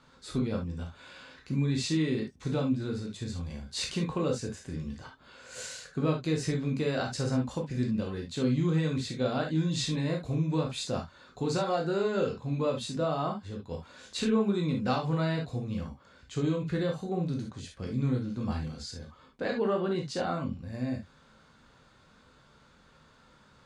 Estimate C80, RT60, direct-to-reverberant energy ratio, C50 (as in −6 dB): 34.5 dB, non-exponential decay, 0.5 dB, 8.0 dB